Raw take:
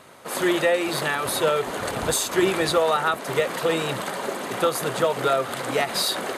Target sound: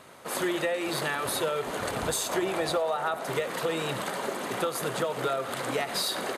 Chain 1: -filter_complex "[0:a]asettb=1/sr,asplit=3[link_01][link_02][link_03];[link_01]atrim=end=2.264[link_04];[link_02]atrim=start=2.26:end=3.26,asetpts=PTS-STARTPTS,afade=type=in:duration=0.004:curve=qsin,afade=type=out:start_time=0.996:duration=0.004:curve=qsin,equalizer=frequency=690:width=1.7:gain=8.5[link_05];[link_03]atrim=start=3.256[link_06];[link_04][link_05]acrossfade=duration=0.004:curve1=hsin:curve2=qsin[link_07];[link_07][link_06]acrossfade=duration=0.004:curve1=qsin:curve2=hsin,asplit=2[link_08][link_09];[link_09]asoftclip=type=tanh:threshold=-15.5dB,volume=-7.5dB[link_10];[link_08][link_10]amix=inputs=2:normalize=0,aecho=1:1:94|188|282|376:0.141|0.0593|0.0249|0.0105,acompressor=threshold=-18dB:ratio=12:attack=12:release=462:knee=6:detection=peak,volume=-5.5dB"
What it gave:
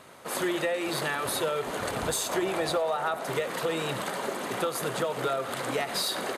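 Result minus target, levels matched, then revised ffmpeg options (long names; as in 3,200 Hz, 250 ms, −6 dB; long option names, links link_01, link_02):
soft clipping: distortion +13 dB
-filter_complex "[0:a]asettb=1/sr,asplit=3[link_01][link_02][link_03];[link_01]atrim=end=2.264[link_04];[link_02]atrim=start=2.26:end=3.26,asetpts=PTS-STARTPTS,afade=type=in:duration=0.004:curve=qsin,afade=type=out:start_time=0.996:duration=0.004:curve=qsin,equalizer=frequency=690:width=1.7:gain=8.5[link_05];[link_03]atrim=start=3.256[link_06];[link_04][link_05]acrossfade=duration=0.004:curve1=hsin:curve2=qsin[link_07];[link_07][link_06]acrossfade=duration=0.004:curve1=qsin:curve2=hsin,asplit=2[link_08][link_09];[link_09]asoftclip=type=tanh:threshold=-6dB,volume=-7.5dB[link_10];[link_08][link_10]amix=inputs=2:normalize=0,aecho=1:1:94|188|282|376:0.141|0.0593|0.0249|0.0105,acompressor=threshold=-18dB:ratio=12:attack=12:release=462:knee=6:detection=peak,volume=-5.5dB"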